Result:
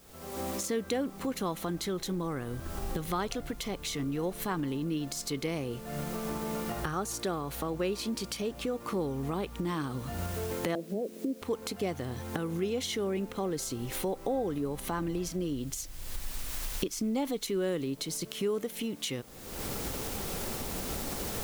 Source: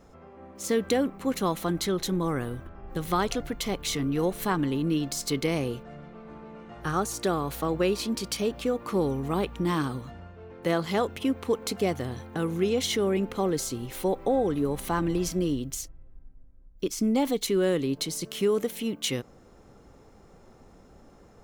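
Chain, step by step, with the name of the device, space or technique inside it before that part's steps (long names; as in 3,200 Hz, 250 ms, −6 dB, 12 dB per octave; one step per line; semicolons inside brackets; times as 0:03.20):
0:10.75–0:11.42: elliptic band-pass filter 190–610 Hz
cheap recorder with automatic gain (white noise bed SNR 26 dB; camcorder AGC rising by 46 dB per second)
level −6.5 dB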